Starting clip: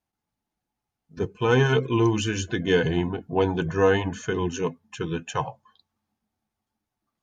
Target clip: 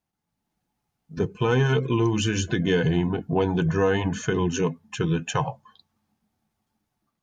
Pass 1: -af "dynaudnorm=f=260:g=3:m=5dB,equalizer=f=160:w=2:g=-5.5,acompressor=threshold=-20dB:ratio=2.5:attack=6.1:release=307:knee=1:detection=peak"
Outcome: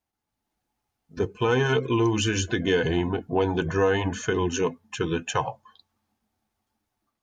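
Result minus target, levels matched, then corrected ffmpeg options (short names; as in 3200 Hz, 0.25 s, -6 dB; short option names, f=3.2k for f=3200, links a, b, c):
125 Hz band -3.5 dB
-af "dynaudnorm=f=260:g=3:m=5dB,equalizer=f=160:w=2:g=6,acompressor=threshold=-20dB:ratio=2.5:attack=6.1:release=307:knee=1:detection=peak"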